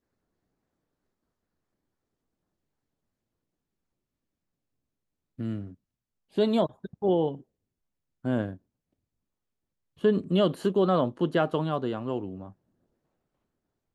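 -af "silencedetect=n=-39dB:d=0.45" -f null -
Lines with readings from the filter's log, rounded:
silence_start: 0.00
silence_end: 5.39 | silence_duration: 5.39
silence_start: 5.72
silence_end: 6.37 | silence_duration: 0.66
silence_start: 7.40
silence_end: 8.25 | silence_duration: 0.84
silence_start: 8.55
silence_end: 10.04 | silence_duration: 1.49
silence_start: 12.50
silence_end: 13.94 | silence_duration: 1.45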